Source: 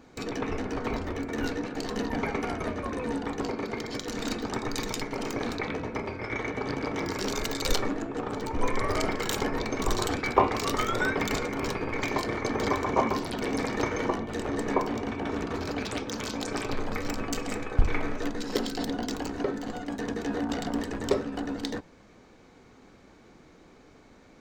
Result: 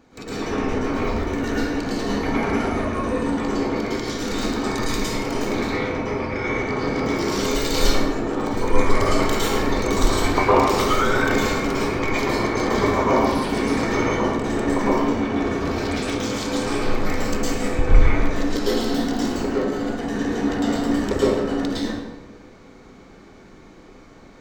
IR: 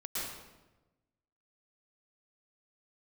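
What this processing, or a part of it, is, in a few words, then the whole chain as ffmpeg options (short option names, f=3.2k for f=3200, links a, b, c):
bathroom: -filter_complex "[1:a]atrim=start_sample=2205[a];[0:a][a]afir=irnorm=-1:irlink=0,volume=4.5dB"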